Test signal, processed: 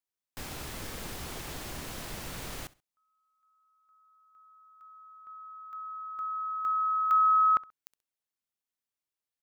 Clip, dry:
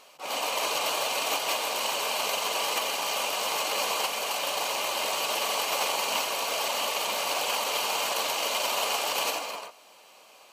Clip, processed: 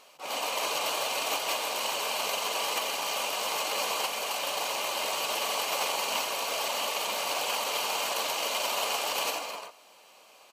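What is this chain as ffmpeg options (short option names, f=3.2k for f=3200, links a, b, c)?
-af "aecho=1:1:66|132:0.0891|0.0241,volume=-2dB"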